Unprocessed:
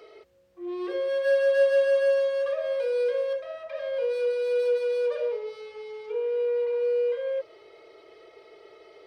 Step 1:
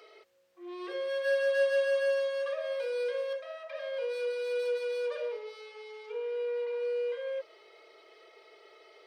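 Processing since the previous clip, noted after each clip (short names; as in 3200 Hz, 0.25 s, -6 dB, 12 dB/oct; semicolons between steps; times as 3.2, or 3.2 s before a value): HPF 990 Hz 6 dB/oct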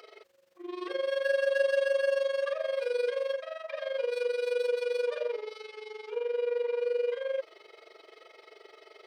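in parallel at +1 dB: limiter -28.5 dBFS, peak gain reduction 9 dB; on the sum: AM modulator 23 Hz, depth 65%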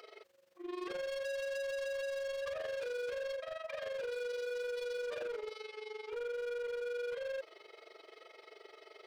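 hard clip -34.5 dBFS, distortion -5 dB; gain -2.5 dB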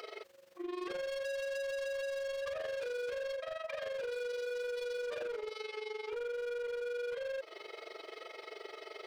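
compressor 6:1, threshold -46 dBFS, peak gain reduction 7.5 dB; gain +8 dB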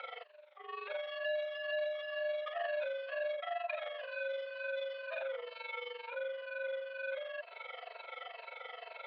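moving spectral ripple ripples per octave 1.4, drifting -2.1 Hz, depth 12 dB; mistuned SSB +56 Hz 540–3400 Hz; gain +1 dB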